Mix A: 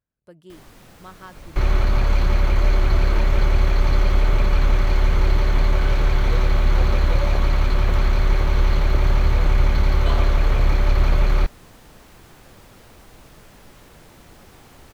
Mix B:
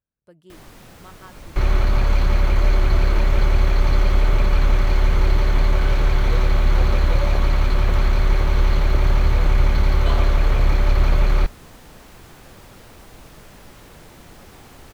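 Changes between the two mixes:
speech −3.5 dB
reverb: on, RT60 1.2 s

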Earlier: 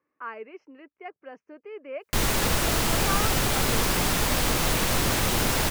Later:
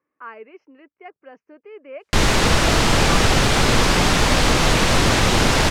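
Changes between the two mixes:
background +8.5 dB
master: add low-pass filter 6,400 Hz 12 dB per octave

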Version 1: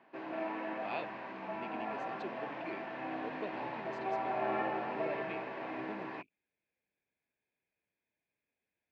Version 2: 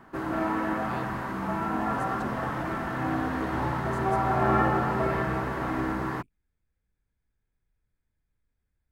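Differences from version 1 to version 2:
background +9.5 dB
master: remove loudspeaker in its box 310–4,500 Hz, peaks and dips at 630 Hz +5 dB, 1,300 Hz −10 dB, 2,500 Hz +10 dB

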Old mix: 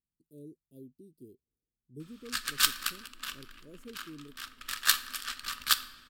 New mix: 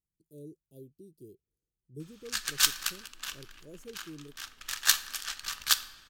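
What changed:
speech +3.5 dB
master: add thirty-one-band graphic EQ 250 Hz −11 dB, 800 Hz +9 dB, 1,250 Hz −5 dB, 6,300 Hz +8 dB

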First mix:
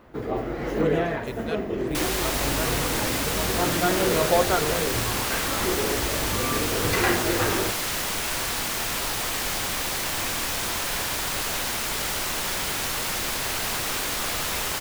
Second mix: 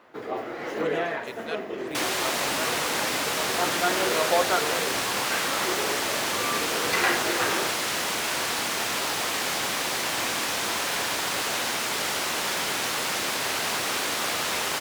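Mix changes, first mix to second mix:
second sound: add low-shelf EQ 480 Hz +11 dB
master: add meter weighting curve A

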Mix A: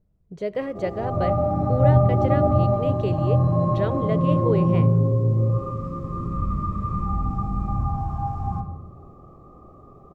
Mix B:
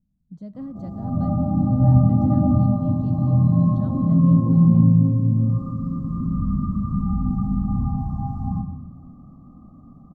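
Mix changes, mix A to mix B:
speech −7.5 dB
master: add drawn EQ curve 110 Hz 0 dB, 170 Hz +7 dB, 260 Hz +11 dB, 390 Hz −19 dB, 760 Hz −6 dB, 1,300 Hz −9 dB, 2,400 Hz −24 dB, 4,200 Hz −8 dB

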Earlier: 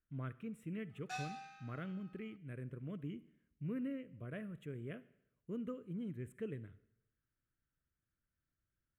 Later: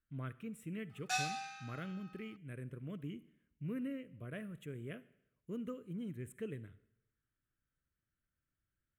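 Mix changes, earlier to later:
background +6.0 dB
master: add high-shelf EQ 3,700 Hz +10 dB

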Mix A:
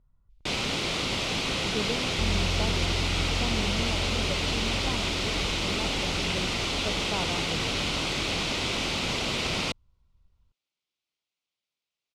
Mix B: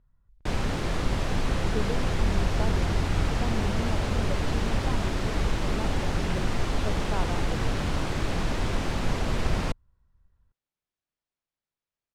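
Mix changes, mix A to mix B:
first sound: remove meter weighting curve D
master: add parametric band 1,700 Hz +11 dB 0.29 octaves

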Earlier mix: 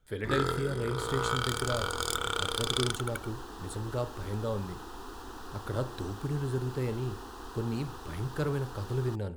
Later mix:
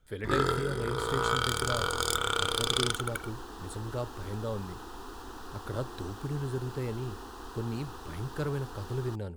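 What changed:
speech: send −11.5 dB
first sound: send on

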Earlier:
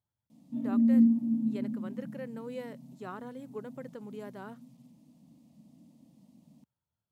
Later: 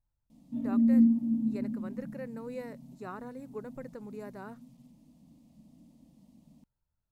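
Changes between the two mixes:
speech: add Butterworth band-reject 3,200 Hz, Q 3.6
master: remove high-pass filter 92 Hz 24 dB per octave

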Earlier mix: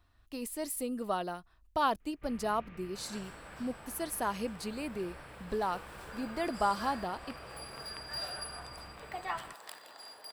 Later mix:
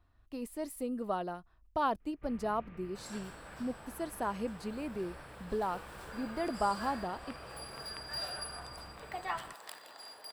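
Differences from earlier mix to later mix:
speech: add high-shelf EQ 2,100 Hz −10.5 dB
first sound: add high-shelf EQ 2,200 Hz −9 dB

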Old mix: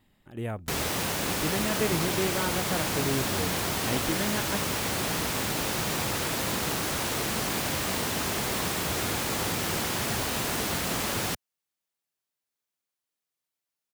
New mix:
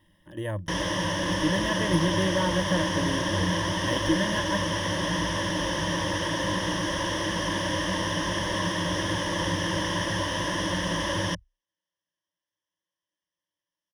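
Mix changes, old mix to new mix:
background: add high-frequency loss of the air 96 metres
master: add EQ curve with evenly spaced ripples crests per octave 1.2, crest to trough 17 dB

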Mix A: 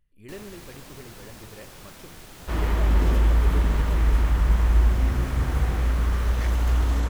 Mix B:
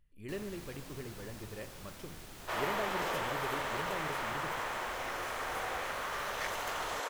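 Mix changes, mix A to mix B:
first sound −5.0 dB
second sound: add high-pass filter 500 Hz 24 dB per octave

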